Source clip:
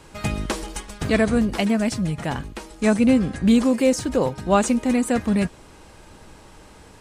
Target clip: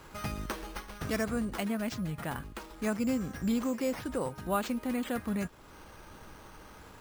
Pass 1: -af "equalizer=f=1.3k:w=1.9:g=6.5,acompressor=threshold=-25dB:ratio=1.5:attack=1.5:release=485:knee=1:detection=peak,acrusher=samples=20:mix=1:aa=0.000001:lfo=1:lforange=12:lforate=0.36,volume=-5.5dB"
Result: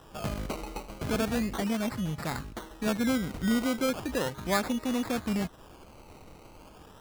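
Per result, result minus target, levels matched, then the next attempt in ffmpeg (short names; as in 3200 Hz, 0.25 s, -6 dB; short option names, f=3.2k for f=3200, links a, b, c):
decimation with a swept rate: distortion +10 dB; compressor: peak gain reduction -3 dB
-af "equalizer=f=1.3k:w=1.9:g=6.5,acompressor=threshold=-25dB:ratio=1.5:attack=1.5:release=485:knee=1:detection=peak,acrusher=samples=5:mix=1:aa=0.000001:lfo=1:lforange=3:lforate=0.36,volume=-5.5dB"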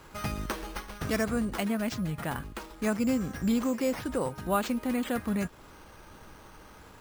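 compressor: peak gain reduction -3 dB
-af "equalizer=f=1.3k:w=1.9:g=6.5,acompressor=threshold=-34dB:ratio=1.5:attack=1.5:release=485:knee=1:detection=peak,acrusher=samples=5:mix=1:aa=0.000001:lfo=1:lforange=3:lforate=0.36,volume=-5.5dB"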